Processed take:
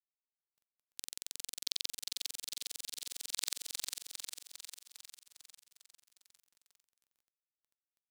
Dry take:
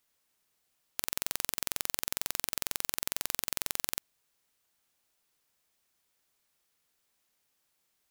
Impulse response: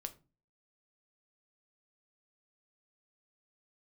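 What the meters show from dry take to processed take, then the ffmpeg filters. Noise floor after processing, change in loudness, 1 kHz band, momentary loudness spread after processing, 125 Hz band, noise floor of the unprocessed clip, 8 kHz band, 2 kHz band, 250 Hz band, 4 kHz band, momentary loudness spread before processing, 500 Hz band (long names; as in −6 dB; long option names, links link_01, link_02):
below −85 dBFS, −7.0 dB, −16.0 dB, 17 LU, below −20 dB, −77 dBFS, −4.0 dB, −10.0 dB, −17.0 dB, −0.5 dB, 3 LU, −16.0 dB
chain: -filter_complex "[0:a]highshelf=frequency=4200:gain=3,acompressor=threshold=-36dB:ratio=12,equalizer=frequency=500:width_type=o:width=1:gain=6,equalizer=frequency=1000:width_type=o:width=1:gain=-6,equalizer=frequency=4000:width_type=o:width=1:gain=9,equalizer=frequency=8000:width_type=o:width=1:gain=8,afwtdn=0.00631,highpass=frequency=260:poles=1,asoftclip=type=tanh:threshold=-27dB,asplit=2[link_01][link_02];[link_02]aecho=0:1:403|806|1209|1612|2015|2418|2821|3224:0.562|0.332|0.196|0.115|0.0681|0.0402|0.0237|0.014[link_03];[link_01][link_03]amix=inputs=2:normalize=0,acrusher=bits=11:mix=0:aa=0.000001,volume=13dB"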